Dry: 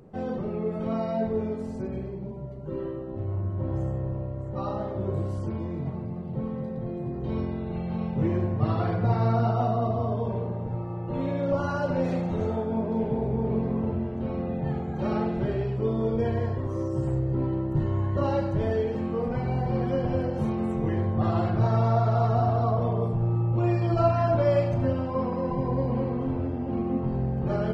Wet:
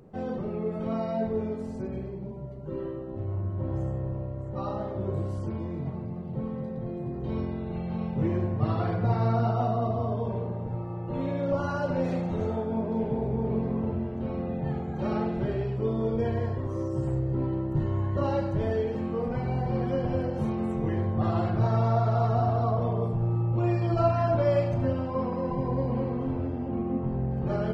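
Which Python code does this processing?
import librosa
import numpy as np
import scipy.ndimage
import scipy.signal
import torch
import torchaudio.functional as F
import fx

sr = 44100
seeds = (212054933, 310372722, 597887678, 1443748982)

y = fx.air_absorb(x, sr, metres=230.0, at=(26.68, 27.31))
y = y * librosa.db_to_amplitude(-1.5)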